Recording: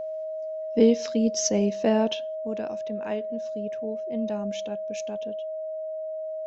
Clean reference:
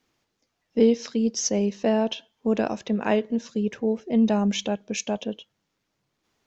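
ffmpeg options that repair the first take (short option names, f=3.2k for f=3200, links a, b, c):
-af "bandreject=f=630:w=30,asetnsamples=n=441:p=0,asendcmd='2.35 volume volume 10.5dB',volume=0dB"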